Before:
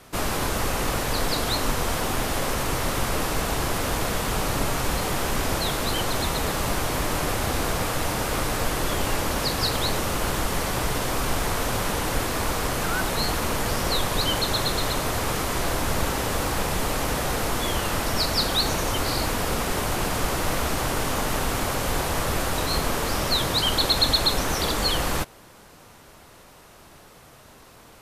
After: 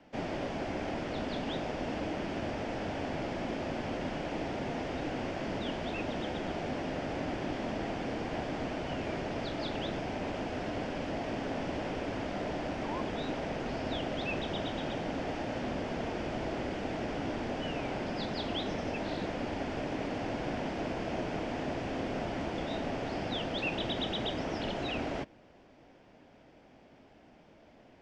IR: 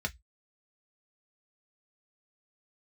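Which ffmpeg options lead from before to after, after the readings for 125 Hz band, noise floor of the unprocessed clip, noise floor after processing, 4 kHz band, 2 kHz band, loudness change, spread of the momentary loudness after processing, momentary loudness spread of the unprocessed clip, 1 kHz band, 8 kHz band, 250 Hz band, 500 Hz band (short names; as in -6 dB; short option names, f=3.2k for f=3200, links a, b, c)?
-11.5 dB, -49 dBFS, -59 dBFS, -16.0 dB, -11.5 dB, -11.0 dB, 2 LU, 3 LU, -11.0 dB, -27.0 dB, -4.5 dB, -7.0 dB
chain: -af "highpass=f=380:w=0.5412,highpass=f=380:w=1.3066,equalizer=f=420:t=q:w=4:g=-6,equalizer=f=720:t=q:w=4:g=8,equalizer=f=1.1k:t=q:w=4:g=6,equalizer=f=1.6k:t=q:w=4:g=-6,equalizer=f=4.4k:t=q:w=4:g=-10,lowpass=f=4.8k:w=0.5412,lowpass=f=4.8k:w=1.3066,afreqshift=-450,volume=-9dB"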